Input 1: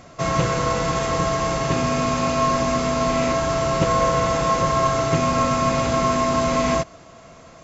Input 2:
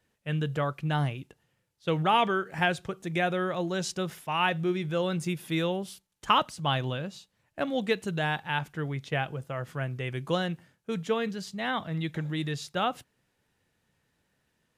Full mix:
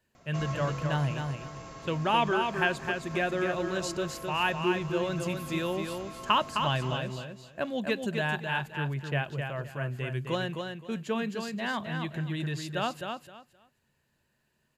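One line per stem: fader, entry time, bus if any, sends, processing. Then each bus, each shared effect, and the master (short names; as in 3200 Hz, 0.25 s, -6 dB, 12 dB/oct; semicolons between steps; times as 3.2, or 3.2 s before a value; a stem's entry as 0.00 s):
-12.0 dB, 0.15 s, no send, echo send -18 dB, limiter -13 dBFS, peak gain reduction 7 dB; auto duck -10 dB, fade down 1.30 s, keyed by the second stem
-2.5 dB, 0.00 s, no send, echo send -5.5 dB, ripple EQ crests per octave 1.4, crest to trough 6 dB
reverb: off
echo: feedback echo 0.26 s, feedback 21%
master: dry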